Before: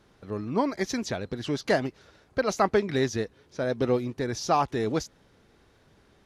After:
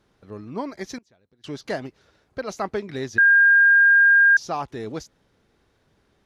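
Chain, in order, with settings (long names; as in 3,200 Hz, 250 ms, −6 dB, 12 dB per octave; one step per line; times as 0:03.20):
0:00.98–0:01.44: gate with flip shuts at −29 dBFS, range −25 dB
0:03.18–0:04.37: beep over 1,610 Hz −6.5 dBFS
level −4.5 dB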